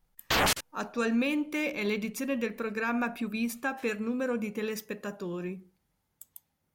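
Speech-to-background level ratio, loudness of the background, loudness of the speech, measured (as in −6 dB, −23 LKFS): −5.0 dB, −27.0 LKFS, −32.0 LKFS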